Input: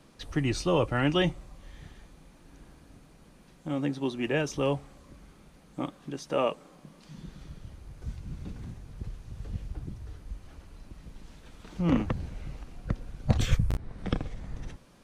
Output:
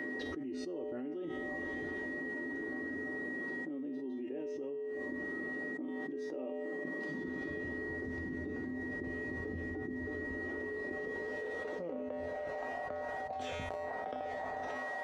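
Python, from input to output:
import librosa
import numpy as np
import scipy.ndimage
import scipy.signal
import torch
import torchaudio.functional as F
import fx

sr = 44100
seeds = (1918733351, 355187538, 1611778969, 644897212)

y = fx.filter_sweep_bandpass(x, sr, from_hz=330.0, to_hz=710.0, start_s=10.34, end_s=12.89, q=4.1)
y = fx.dynamic_eq(y, sr, hz=1100.0, q=1.4, threshold_db=-59.0, ratio=4.0, max_db=-6)
y = y + 10.0 ** (-65.0 / 20.0) * np.sin(2.0 * np.pi * 1900.0 * np.arange(len(y)) / sr)
y = fx.bass_treble(y, sr, bass_db=-12, treble_db=5)
y = fx.comb_fb(y, sr, f0_hz=85.0, decay_s=0.45, harmonics='odd', damping=0.0, mix_pct=90)
y = fx.env_flatten(y, sr, amount_pct=100)
y = F.gain(torch.from_numpy(y), 6.5).numpy()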